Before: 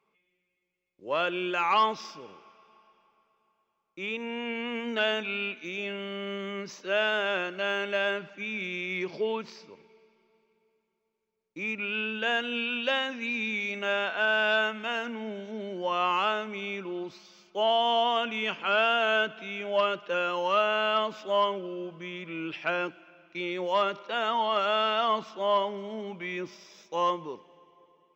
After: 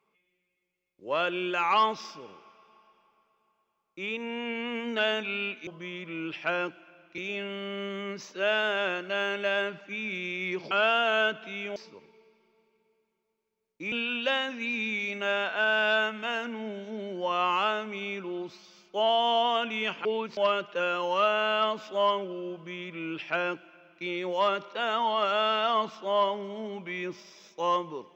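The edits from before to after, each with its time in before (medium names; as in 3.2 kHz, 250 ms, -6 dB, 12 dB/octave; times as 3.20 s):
9.20–9.52 s: swap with 18.66–19.71 s
11.68–12.53 s: delete
21.87–23.38 s: copy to 5.67 s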